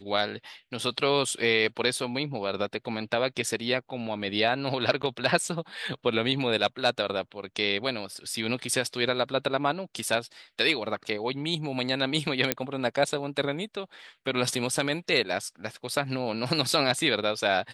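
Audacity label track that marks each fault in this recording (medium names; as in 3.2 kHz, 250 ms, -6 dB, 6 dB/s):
5.020000	5.030000	dropout 9.9 ms
12.520000	12.520000	pop -5 dBFS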